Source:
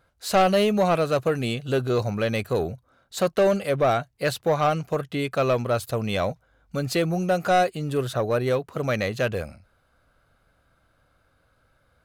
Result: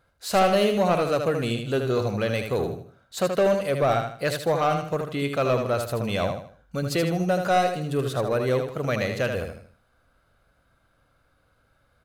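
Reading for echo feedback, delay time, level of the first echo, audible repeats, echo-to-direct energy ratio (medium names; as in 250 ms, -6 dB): 34%, 78 ms, -6.0 dB, 4, -5.5 dB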